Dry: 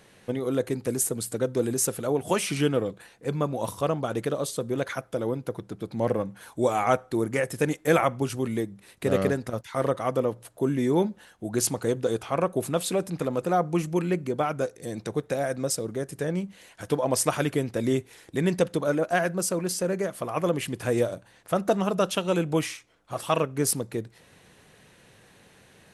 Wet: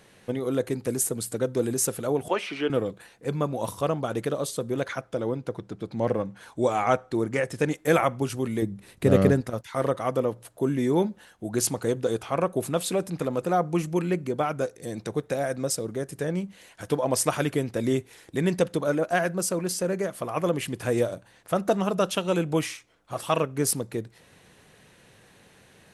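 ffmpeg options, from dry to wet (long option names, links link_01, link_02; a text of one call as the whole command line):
ffmpeg -i in.wav -filter_complex "[0:a]asettb=1/sr,asplit=3[link_01][link_02][link_03];[link_01]atrim=end=2.284[link_04];[link_02]atrim=start=2.28:end=2.7,asetpts=PTS-STARTPTS,afade=type=in:duration=0.004:curve=qsin,afade=type=out:start_time=0.416:duration=0.004:curve=qsin,acrossover=split=270 4000:gain=0.0631 1 0.0708[link_05][link_06][link_07];[link_05][link_06][link_07]amix=inputs=3:normalize=0[link_08];[link_03]atrim=start=2.696[link_09];[link_04][link_08]acrossfade=duration=0.004:curve1=hsin:curve2=qsin[link_10];[link_10][link_09]acrossfade=duration=0.004:curve1=qsin:curve2=hsin,asettb=1/sr,asplit=3[link_11][link_12][link_13];[link_11]atrim=end=4.874[link_14];[link_12]atrim=start=4.87:end=7.74,asetpts=PTS-STARTPTS,afade=type=in:duration=0.004:curve=qsin,afade=type=out:start_time=2.866:duration=0.004:curve=qsin,lowpass=7700[link_15];[link_13]atrim=start=7.736[link_16];[link_14][link_15]acrossfade=duration=0.004:curve1=hsin:curve2=qsin[link_17];[link_17][link_16]acrossfade=duration=0.004:curve1=qsin:curve2=hsin,asettb=1/sr,asplit=3[link_18][link_19][link_20];[link_18]atrim=end=8.624[link_21];[link_19]atrim=start=8.62:end=9.41,asetpts=PTS-STARTPTS,afade=type=in:duration=0.004:curve=qsin,afade=type=out:start_time=0.786:duration=0.004:curve=qsin,lowshelf=frequency=340:gain=9.5[link_22];[link_20]atrim=start=9.406[link_23];[link_21][link_22]acrossfade=duration=0.004:curve1=hsin:curve2=qsin[link_24];[link_24][link_23]acrossfade=duration=0.004:curve1=qsin:curve2=hsin" out.wav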